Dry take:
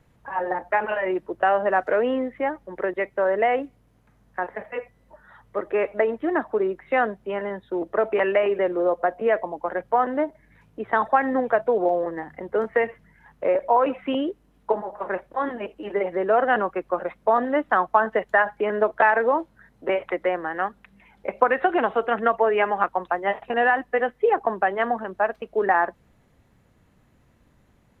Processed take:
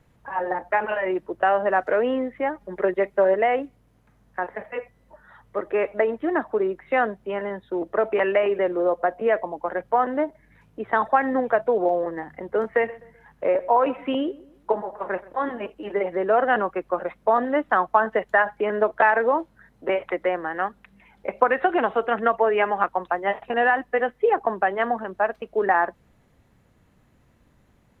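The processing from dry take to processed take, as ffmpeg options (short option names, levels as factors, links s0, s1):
-filter_complex "[0:a]asettb=1/sr,asplit=3[s0][s1][s2];[s0]atrim=end=2.604[s3];[s1]atrim=start=2.6:end=3.34,asetpts=PTS-STARTPTS,afade=t=in:d=0.004:c=qsin,afade=t=out:st=0.736:d=0.004:c=qsin,aecho=1:1:4.9:0.85,atrim=end_sample=32634[s4];[s2]atrim=start=3.336[s5];[s3][s4]acrossfade=d=0.004:c1=hsin:c2=qsin[s6];[s6][s5]acrossfade=d=0.004:c1=qsin:c2=hsin,asettb=1/sr,asplit=3[s7][s8][s9];[s7]atrim=end=12.744[s10];[s8]atrim=start=12.74:end=15.7,asetpts=PTS-STARTPTS,afade=t=in:d=0.004:c=qsin,afade=t=out:st=2.956:d=0.004:c=qsin,asplit=2[s11][s12];[s12]adelay=127,lowpass=f=2000:p=1,volume=0.1,asplit=2[s13][s14];[s14]adelay=127,lowpass=f=2000:p=1,volume=0.38,asplit=2[s15][s16];[s16]adelay=127,lowpass=f=2000:p=1,volume=0.38[s17];[s11][s13][s15][s17]amix=inputs=4:normalize=0,atrim=end_sample=130536[s18];[s9]atrim=start=15.696[s19];[s10][s18]acrossfade=d=0.004:c1=hsin:c2=qsin[s20];[s20][s19]acrossfade=d=0.004:c1=qsin:c2=hsin"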